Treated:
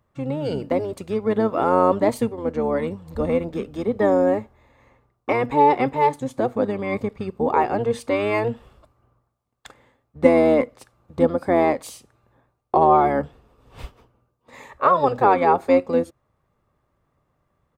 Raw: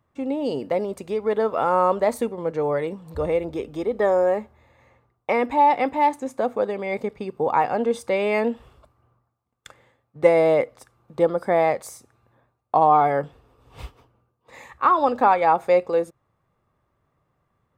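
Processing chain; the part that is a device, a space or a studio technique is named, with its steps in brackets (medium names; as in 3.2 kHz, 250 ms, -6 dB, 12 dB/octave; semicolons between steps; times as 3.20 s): octave pedal (harmony voices -12 st -5 dB)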